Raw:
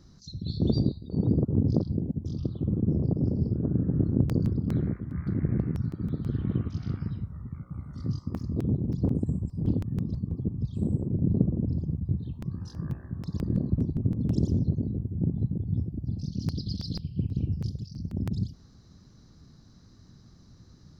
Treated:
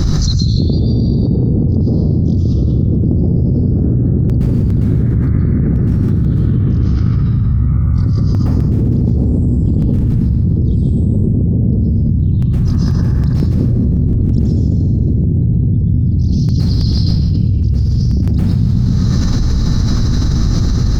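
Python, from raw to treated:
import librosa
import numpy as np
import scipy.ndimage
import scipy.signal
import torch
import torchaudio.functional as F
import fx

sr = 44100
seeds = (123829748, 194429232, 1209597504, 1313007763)

p1 = fx.low_shelf(x, sr, hz=130.0, db=11.5)
p2 = p1 + fx.echo_feedback(p1, sr, ms=135, feedback_pct=42, wet_db=-8, dry=0)
p3 = fx.rev_plate(p2, sr, seeds[0], rt60_s=0.98, hf_ratio=0.8, predelay_ms=105, drr_db=-5.0)
p4 = fx.env_flatten(p3, sr, amount_pct=100)
y = p4 * 10.0 ** (-3.5 / 20.0)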